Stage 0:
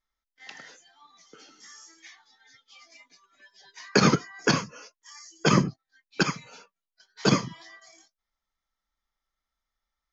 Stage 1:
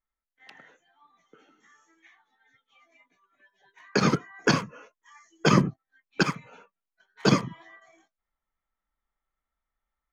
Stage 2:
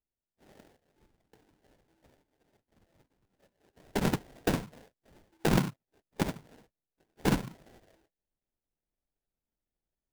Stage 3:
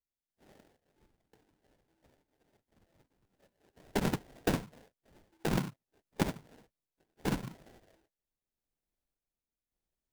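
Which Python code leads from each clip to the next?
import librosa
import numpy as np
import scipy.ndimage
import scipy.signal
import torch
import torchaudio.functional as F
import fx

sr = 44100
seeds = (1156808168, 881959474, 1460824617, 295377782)

y1 = fx.wiener(x, sr, points=9)
y1 = fx.high_shelf(y1, sr, hz=5400.0, db=-5.0)
y1 = fx.rider(y1, sr, range_db=10, speed_s=0.5)
y2 = fx.sample_hold(y1, sr, seeds[0], rate_hz=1200.0, jitter_pct=20)
y2 = y2 * 10.0 ** (-6.0 / 20.0)
y3 = fx.tremolo_random(y2, sr, seeds[1], hz=3.5, depth_pct=55)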